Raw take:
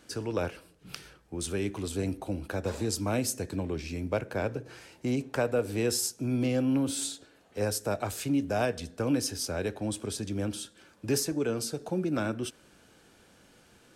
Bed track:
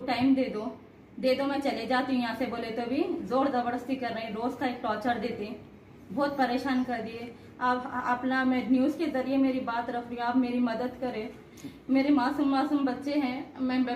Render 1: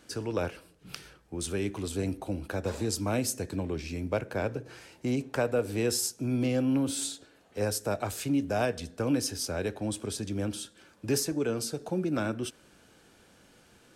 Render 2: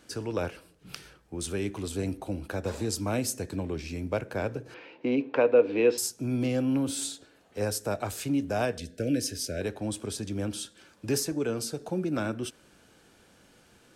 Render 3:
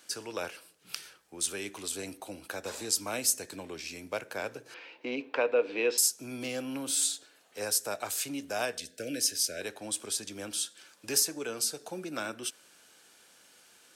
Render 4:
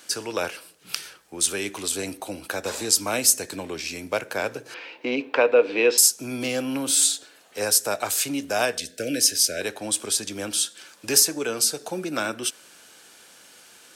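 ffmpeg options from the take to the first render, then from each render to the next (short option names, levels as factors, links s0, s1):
-af anull
-filter_complex "[0:a]asettb=1/sr,asplit=3[s0][s1][s2];[s0]atrim=end=4.744[s3];[s1]atrim=start=4.74:end=5.98,asetpts=PTS-STARTPTS,afade=t=in:d=0.004:c=qsin,afade=t=out:st=1.236:d=0.004:c=qsin,highpass=220,equalizer=f=290:t=q:w=4:g=8,equalizer=f=490:t=q:w=4:g=9,equalizer=f=990:t=q:w=4:g=6,equalizer=f=2500:t=q:w=4:g=7,lowpass=f=3700:w=0.5412,lowpass=f=3700:w=1.3066[s4];[s2]atrim=start=5.976[s5];[s3][s4]acrossfade=d=0.004:c1=hsin:c2=qsin[s6];[s6][s5]acrossfade=d=0.004:c1=qsin:c2=hsin,asettb=1/sr,asplit=3[s7][s8][s9];[s7]atrim=end=8.784[s10];[s8]atrim=start=8.78:end=9.61,asetpts=PTS-STARTPTS,afade=t=in:d=0.004:c=qsin,afade=t=out:st=0.826:d=0.004:c=qsin,asuperstop=centerf=1000:order=8:qfactor=1.2[s11];[s9]atrim=start=9.606[s12];[s10][s11]acrossfade=d=0.004:c1=hsin:c2=qsin[s13];[s13][s12]acrossfade=d=0.004:c1=qsin:c2=hsin,asettb=1/sr,asplit=3[s14][s15][s16];[s14]atrim=end=10.554[s17];[s15]atrim=start=10.55:end=11.09,asetpts=PTS-STARTPTS,afade=t=in:d=0.004:c=qsin,afade=t=out:st=0.536:d=0.004:c=qsin,equalizer=f=5000:w=0.48:g=3[s18];[s16]atrim=start=11.086[s19];[s17][s18]acrossfade=d=0.004:c1=hsin:c2=qsin[s20];[s20][s19]acrossfade=d=0.004:c1=qsin:c2=hsin"
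-af "highpass=f=890:p=1,highshelf=f=3900:g=7.5"
-af "volume=2.82"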